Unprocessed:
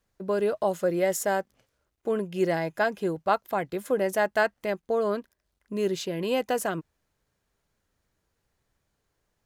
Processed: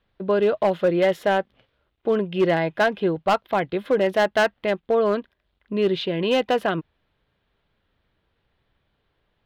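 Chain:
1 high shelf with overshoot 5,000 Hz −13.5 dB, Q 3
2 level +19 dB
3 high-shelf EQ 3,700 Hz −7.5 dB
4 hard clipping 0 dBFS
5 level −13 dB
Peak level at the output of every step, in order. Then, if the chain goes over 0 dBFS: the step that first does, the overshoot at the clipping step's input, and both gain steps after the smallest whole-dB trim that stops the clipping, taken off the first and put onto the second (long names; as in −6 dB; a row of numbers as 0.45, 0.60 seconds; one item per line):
−9.0, +10.0, +9.5, 0.0, −13.0 dBFS
step 2, 9.5 dB
step 2 +9 dB, step 5 −3 dB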